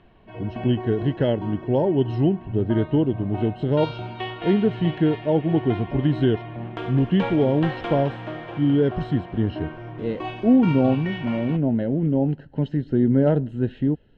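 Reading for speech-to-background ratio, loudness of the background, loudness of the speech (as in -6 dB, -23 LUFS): 11.5 dB, -34.0 LUFS, -22.5 LUFS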